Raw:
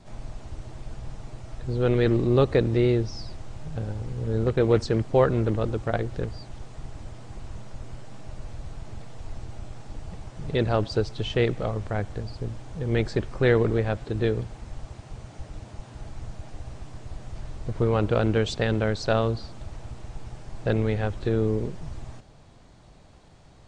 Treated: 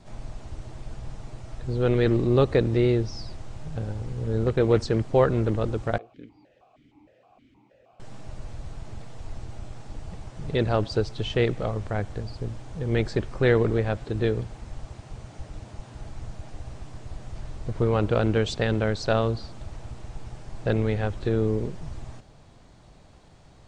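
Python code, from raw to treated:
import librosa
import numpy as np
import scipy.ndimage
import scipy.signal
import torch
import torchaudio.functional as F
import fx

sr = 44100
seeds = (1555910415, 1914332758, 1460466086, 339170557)

y = fx.vowel_held(x, sr, hz=6.4, at=(5.98, 8.0))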